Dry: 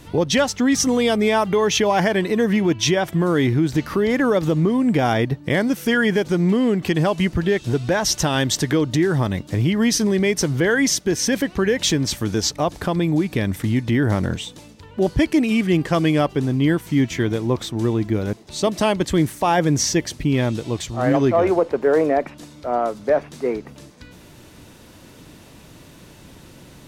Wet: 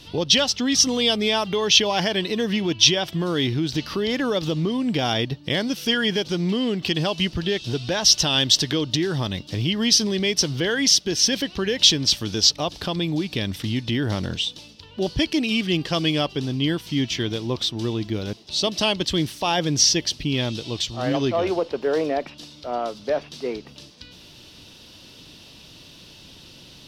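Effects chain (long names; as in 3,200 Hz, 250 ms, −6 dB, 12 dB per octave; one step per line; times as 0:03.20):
flat-topped bell 3,900 Hz +13.5 dB 1.3 octaves
level −5.5 dB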